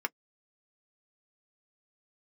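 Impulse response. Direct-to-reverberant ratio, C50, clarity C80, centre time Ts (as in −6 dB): 4.0 dB, 49.5 dB, can't be measured, 3 ms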